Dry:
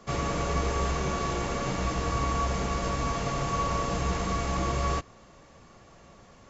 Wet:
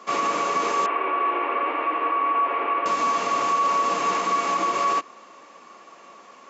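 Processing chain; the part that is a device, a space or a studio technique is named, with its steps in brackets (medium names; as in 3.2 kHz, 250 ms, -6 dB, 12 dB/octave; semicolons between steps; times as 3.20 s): laptop speaker (high-pass 260 Hz 24 dB/octave; peaking EQ 1.1 kHz +9 dB 0.48 oct; peaking EQ 2.5 kHz +5.5 dB 0.59 oct; peak limiter -18.5 dBFS, peak gain reduction 6 dB); 0.86–2.86 s: elliptic band-pass 300–2600 Hz, stop band 40 dB; trim +4 dB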